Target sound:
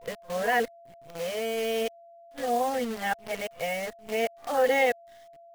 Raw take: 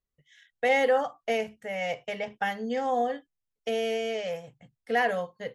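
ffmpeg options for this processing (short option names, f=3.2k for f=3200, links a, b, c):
-af "areverse,acrusher=bits=7:dc=4:mix=0:aa=0.000001,aeval=exprs='val(0)+0.00355*sin(2*PI*680*n/s)':c=same"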